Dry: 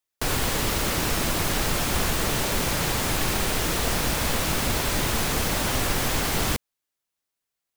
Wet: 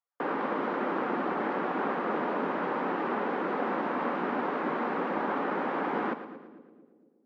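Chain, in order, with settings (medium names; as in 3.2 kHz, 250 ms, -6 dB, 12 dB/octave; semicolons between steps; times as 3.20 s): steep high-pass 200 Hz 36 dB/octave; band-stop 610 Hz, Q 12; tape speed +7%; four-pole ladder low-pass 1.7 kHz, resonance 20%; two-band feedback delay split 470 Hz, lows 237 ms, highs 113 ms, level -12 dB; trim +4.5 dB; Vorbis 48 kbps 48 kHz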